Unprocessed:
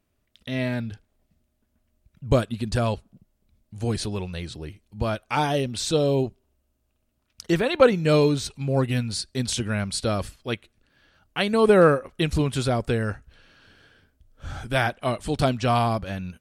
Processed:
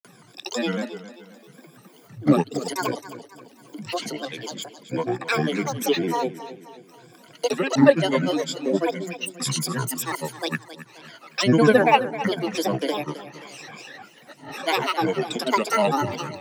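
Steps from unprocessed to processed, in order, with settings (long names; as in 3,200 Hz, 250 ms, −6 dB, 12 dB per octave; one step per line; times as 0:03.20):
rippled gain that drifts along the octave scale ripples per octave 1.8, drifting +0.49 Hz, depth 17 dB
Butterworth high-pass 200 Hz 96 dB per octave
in parallel at +2.5 dB: upward compression, threshold −20 dBFS
on the sum: granular cloud, pitch spread up and down by 12 semitones
feedback echo with a swinging delay time 266 ms, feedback 45%, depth 65 cents, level −14 dB
level −8 dB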